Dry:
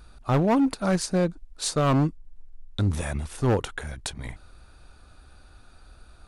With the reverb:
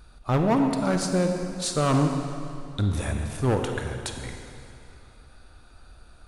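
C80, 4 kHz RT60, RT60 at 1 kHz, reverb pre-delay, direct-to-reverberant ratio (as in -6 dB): 5.5 dB, 2.3 s, 2.7 s, 30 ms, 4.0 dB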